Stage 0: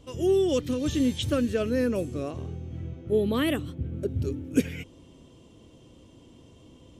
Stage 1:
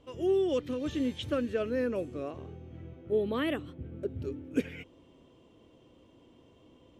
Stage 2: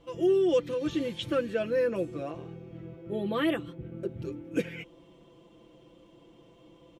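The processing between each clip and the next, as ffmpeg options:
-af "bass=f=250:g=-8,treble=f=4k:g=-13,volume=-3dB"
-af "aecho=1:1:5.9:0.82,volume=1dB"

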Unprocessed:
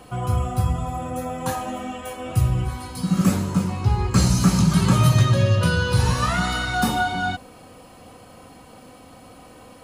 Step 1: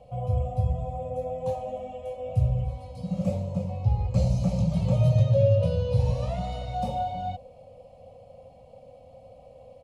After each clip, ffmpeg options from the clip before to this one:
-af "firequalizer=gain_entry='entry(120,0);entry(360,-23);entry(530,9);entry(1000,-15);entry(1500,-30);entry(2300,-12);entry(13000,-27)':delay=0.05:min_phase=1,volume=-3.5dB"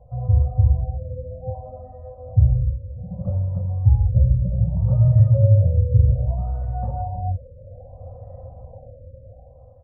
-af "lowshelf=f=140:t=q:w=1.5:g=12,dynaudnorm=f=280:g=9:m=11dB,afftfilt=real='re*lt(b*sr/1024,600*pow(2000/600,0.5+0.5*sin(2*PI*0.63*pts/sr)))':imag='im*lt(b*sr/1024,600*pow(2000/600,0.5+0.5*sin(2*PI*0.63*pts/sr)))':win_size=1024:overlap=0.75,volume=-4dB"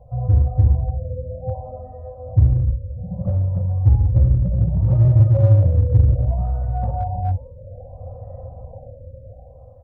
-filter_complex "[0:a]flanger=delay=8.7:depth=4.4:regen=-89:speed=1.2:shape=triangular,asplit=2[a][b];[b]asoftclip=type=hard:threshold=-24dB,volume=-5dB[c];[a][c]amix=inputs=2:normalize=0,volume=4dB"

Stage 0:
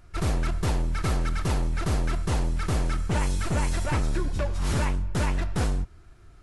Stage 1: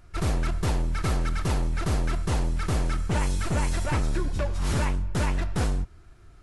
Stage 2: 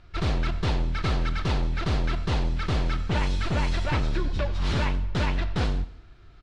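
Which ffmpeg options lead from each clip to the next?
-af anull
-af "lowpass=f=3.9k:t=q:w=1.8,aecho=1:1:90|180|270|360:0.119|0.057|0.0274|0.0131"

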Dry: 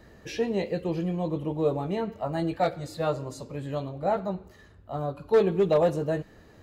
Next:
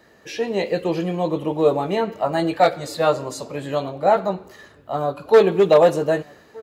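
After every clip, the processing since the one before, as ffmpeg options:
-filter_complex "[0:a]highpass=f=450:p=1,dynaudnorm=f=150:g=7:m=8dB,asplit=2[a][b];[b]adelay=1224,volume=-25dB,highshelf=f=4k:g=-27.6[c];[a][c]amix=inputs=2:normalize=0,volume=3.5dB"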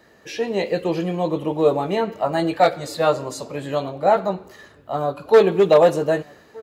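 -af anull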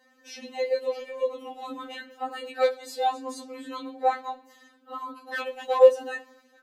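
-af "afftfilt=real='re*3.46*eq(mod(b,12),0)':imag='im*3.46*eq(mod(b,12),0)':win_size=2048:overlap=0.75,volume=-5.5dB"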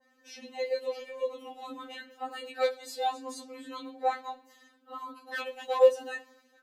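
-af "adynamicequalizer=threshold=0.0112:dfrequency=1900:dqfactor=0.7:tfrequency=1900:tqfactor=0.7:attack=5:release=100:ratio=0.375:range=2:mode=boostabove:tftype=highshelf,volume=-5dB"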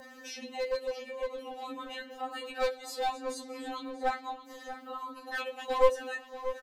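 -filter_complex "[0:a]acompressor=mode=upward:threshold=-36dB:ratio=2.5,aeval=exprs='clip(val(0),-1,0.0335)':c=same,asplit=2[a][b];[b]adelay=635,lowpass=f=3.3k:p=1,volume=-12dB,asplit=2[c][d];[d]adelay=635,lowpass=f=3.3k:p=1,volume=0.48,asplit=2[e][f];[f]adelay=635,lowpass=f=3.3k:p=1,volume=0.48,asplit=2[g][h];[h]adelay=635,lowpass=f=3.3k:p=1,volume=0.48,asplit=2[i][j];[j]adelay=635,lowpass=f=3.3k:p=1,volume=0.48[k];[a][c][e][g][i][k]amix=inputs=6:normalize=0"

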